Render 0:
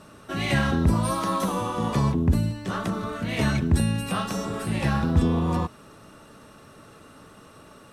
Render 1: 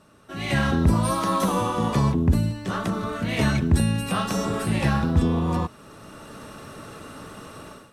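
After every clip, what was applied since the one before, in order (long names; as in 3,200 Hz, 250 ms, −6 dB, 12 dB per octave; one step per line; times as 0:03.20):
automatic gain control gain up to 16 dB
level −7.5 dB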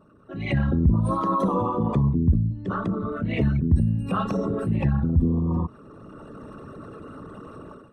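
spectral envelope exaggerated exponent 2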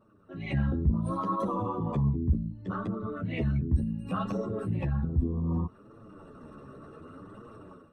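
flanger 0.67 Hz, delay 8.4 ms, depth 6.8 ms, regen −3%
level −4 dB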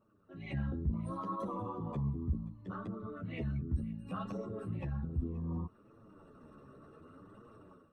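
feedback echo with a high-pass in the loop 528 ms, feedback 40%, high-pass 970 Hz, level −21 dB
level −8.5 dB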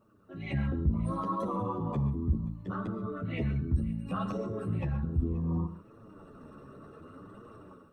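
reverb whose tail is shaped and stops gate 160 ms rising, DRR 11 dB
level +6 dB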